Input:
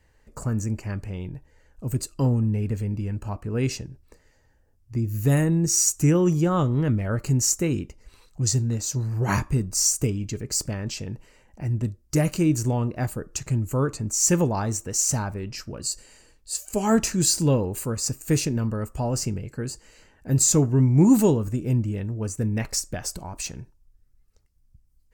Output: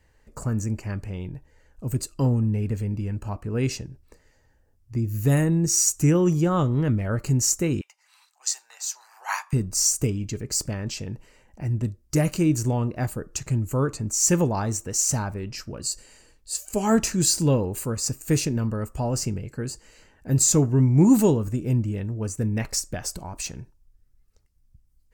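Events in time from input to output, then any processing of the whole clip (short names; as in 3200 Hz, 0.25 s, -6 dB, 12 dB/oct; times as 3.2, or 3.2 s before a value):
7.81–9.53 elliptic high-pass 790 Hz, stop band 80 dB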